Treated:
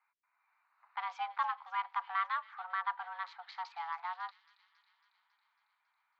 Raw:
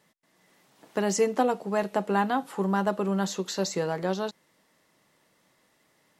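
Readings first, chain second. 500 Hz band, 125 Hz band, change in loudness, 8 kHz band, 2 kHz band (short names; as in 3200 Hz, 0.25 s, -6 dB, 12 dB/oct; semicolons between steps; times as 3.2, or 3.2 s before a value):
-36.0 dB, under -40 dB, -10.5 dB, under -35 dB, -5.5 dB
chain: Wiener smoothing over 15 samples; thin delay 0.275 s, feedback 66%, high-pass 2500 Hz, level -13 dB; mistuned SSB +350 Hz 560–3600 Hz; gain -6.5 dB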